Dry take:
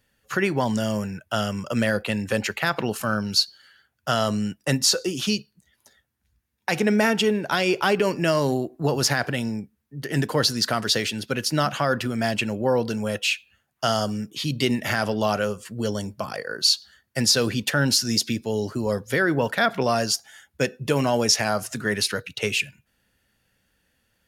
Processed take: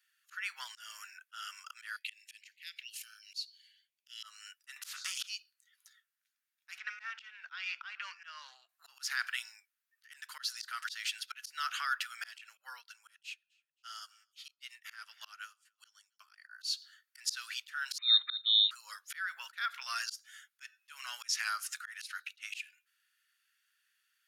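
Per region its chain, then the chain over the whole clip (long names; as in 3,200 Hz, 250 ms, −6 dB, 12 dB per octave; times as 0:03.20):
0:01.96–0:04.23: Butterworth high-pass 2,100 Hz 48 dB per octave + high-shelf EQ 4,400 Hz −5 dB
0:04.76–0:05.18: low-pass filter 1,400 Hz 6 dB per octave + every bin compressed towards the loudest bin 4 to 1
0:06.78–0:08.69: high-frequency loss of the air 180 metres + highs frequency-modulated by the lows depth 0.1 ms
0:12.57–0:16.36: repeating echo 269 ms, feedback 36%, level −24 dB + expander for the loud parts 2.5 to 1, over −33 dBFS
0:17.98–0:18.71: parametric band 200 Hz +9.5 dB 0.95 octaves + voice inversion scrambler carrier 3,900 Hz
whole clip: elliptic high-pass filter 1,300 Hz, stop band 80 dB; volume swells 247 ms; level −5 dB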